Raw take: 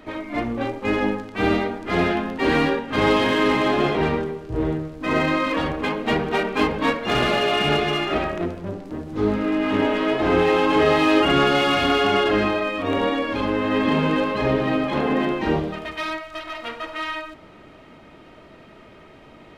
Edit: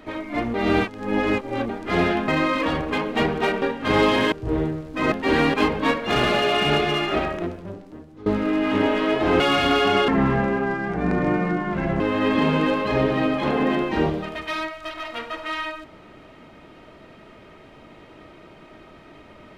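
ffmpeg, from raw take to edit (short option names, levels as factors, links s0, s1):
-filter_complex "[0:a]asplit=12[s0][s1][s2][s3][s4][s5][s6][s7][s8][s9][s10][s11];[s0]atrim=end=0.542[s12];[s1]atrim=start=0.538:end=1.692,asetpts=PTS-STARTPTS,areverse[s13];[s2]atrim=start=1.688:end=2.282[s14];[s3]atrim=start=5.188:end=6.532[s15];[s4]atrim=start=2.698:end=3.402[s16];[s5]atrim=start=4.388:end=5.192[s17];[s6]atrim=start=2.278:end=2.702[s18];[s7]atrim=start=6.528:end=9.25,asetpts=PTS-STARTPTS,afade=t=out:st=1.642:d=1.08:silence=0.0891251[s19];[s8]atrim=start=9.25:end=10.392,asetpts=PTS-STARTPTS,afade=t=in:d=0.004:c=hsin:silence=0.0891251[s20];[s9]atrim=start=11.588:end=12.274[s21];[s10]atrim=start=12.27:end=13.5,asetpts=PTS-STARTPTS,asetrate=28224,aresample=44100[s22];[s11]atrim=start=13.496[s23];[s12][s13]acrossfade=d=0.004:c1=hsin:c2=hsin[s24];[s24][s14]acrossfade=d=0.004:c1=hsin:c2=hsin[s25];[s25][s15]acrossfade=d=0.004:c1=hsin:c2=hsin[s26];[s26][s16]acrossfade=d=0.004:c1=hsin:c2=hsin[s27];[s27][s17]acrossfade=d=0.004:c1=hsin:c2=hsin[s28];[s28][s18]acrossfade=d=0.004:c1=hsin:c2=hsin[s29];[s19][s20]concat=n=2:v=0:a=1[s30];[s29][s30]acrossfade=d=0.004:c1=hsin:c2=hsin[s31];[s31][s21]acrossfade=d=0.004:c1=hsin:c2=hsin[s32];[s32][s22]acrossfade=d=0.004:c1=hsin:c2=hsin[s33];[s33][s23]acrossfade=d=0.004:c1=hsin:c2=hsin"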